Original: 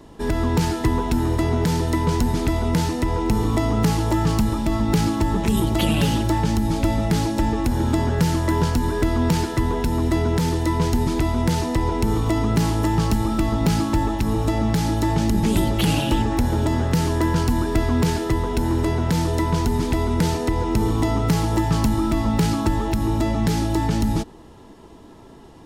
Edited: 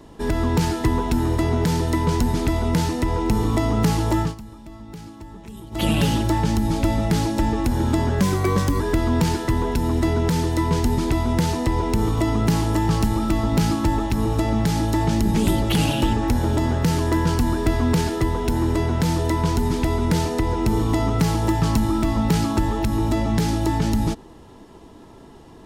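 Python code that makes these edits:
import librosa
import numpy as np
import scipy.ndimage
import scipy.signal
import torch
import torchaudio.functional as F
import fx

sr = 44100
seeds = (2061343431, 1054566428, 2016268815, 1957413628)

y = fx.edit(x, sr, fx.fade_down_up(start_s=4.2, length_s=1.66, db=-18.5, fade_s=0.15),
    fx.speed_span(start_s=8.21, length_s=0.68, speed=1.15), tone=tone)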